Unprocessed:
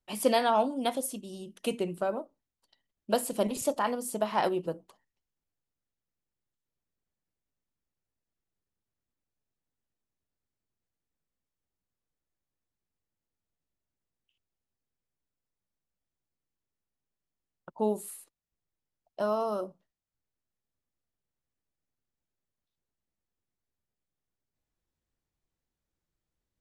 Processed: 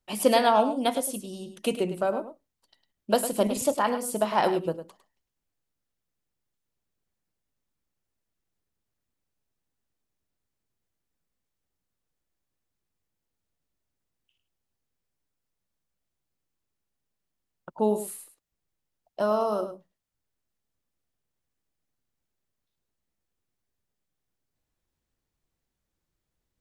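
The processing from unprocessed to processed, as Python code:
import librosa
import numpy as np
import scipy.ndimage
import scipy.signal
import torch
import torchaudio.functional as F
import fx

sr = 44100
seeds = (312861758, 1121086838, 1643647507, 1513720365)

y = x + 10.0 ** (-11.0 / 20.0) * np.pad(x, (int(104 * sr / 1000.0), 0))[:len(x)]
y = y * librosa.db_to_amplitude(4.0)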